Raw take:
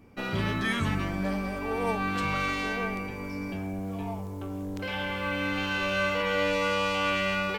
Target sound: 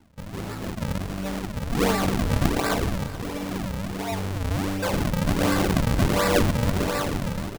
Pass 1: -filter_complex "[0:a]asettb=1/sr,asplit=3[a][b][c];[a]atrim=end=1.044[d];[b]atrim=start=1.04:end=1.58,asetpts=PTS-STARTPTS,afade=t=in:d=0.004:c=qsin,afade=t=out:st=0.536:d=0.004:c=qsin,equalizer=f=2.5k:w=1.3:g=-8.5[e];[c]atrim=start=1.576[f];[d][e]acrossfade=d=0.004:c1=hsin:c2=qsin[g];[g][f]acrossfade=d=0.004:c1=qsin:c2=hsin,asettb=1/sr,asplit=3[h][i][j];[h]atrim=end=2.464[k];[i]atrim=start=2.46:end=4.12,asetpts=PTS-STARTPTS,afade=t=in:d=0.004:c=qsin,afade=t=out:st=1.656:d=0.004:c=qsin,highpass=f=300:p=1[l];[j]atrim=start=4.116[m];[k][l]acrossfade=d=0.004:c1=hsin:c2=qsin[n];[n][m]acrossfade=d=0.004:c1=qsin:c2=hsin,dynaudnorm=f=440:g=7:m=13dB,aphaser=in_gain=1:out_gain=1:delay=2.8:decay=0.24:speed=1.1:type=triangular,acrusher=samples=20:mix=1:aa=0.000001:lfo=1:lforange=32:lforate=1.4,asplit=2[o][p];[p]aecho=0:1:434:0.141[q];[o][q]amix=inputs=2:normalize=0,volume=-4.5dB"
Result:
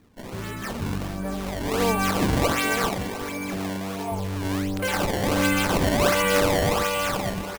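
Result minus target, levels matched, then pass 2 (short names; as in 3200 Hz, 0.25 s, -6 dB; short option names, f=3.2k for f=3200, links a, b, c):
decimation with a swept rate: distortion -9 dB
-filter_complex "[0:a]asettb=1/sr,asplit=3[a][b][c];[a]atrim=end=1.044[d];[b]atrim=start=1.04:end=1.58,asetpts=PTS-STARTPTS,afade=t=in:d=0.004:c=qsin,afade=t=out:st=0.536:d=0.004:c=qsin,equalizer=f=2.5k:w=1.3:g=-8.5[e];[c]atrim=start=1.576[f];[d][e]acrossfade=d=0.004:c1=hsin:c2=qsin[g];[g][f]acrossfade=d=0.004:c1=qsin:c2=hsin,asettb=1/sr,asplit=3[h][i][j];[h]atrim=end=2.464[k];[i]atrim=start=2.46:end=4.12,asetpts=PTS-STARTPTS,afade=t=in:d=0.004:c=qsin,afade=t=out:st=1.656:d=0.004:c=qsin,highpass=f=300:p=1[l];[j]atrim=start=4.116[m];[k][l]acrossfade=d=0.004:c1=hsin:c2=qsin[n];[n][m]acrossfade=d=0.004:c1=qsin:c2=hsin,dynaudnorm=f=440:g=7:m=13dB,aphaser=in_gain=1:out_gain=1:delay=2.8:decay=0.24:speed=1.1:type=triangular,acrusher=samples=70:mix=1:aa=0.000001:lfo=1:lforange=112:lforate=1.4,asplit=2[o][p];[p]aecho=0:1:434:0.141[q];[o][q]amix=inputs=2:normalize=0,volume=-4.5dB"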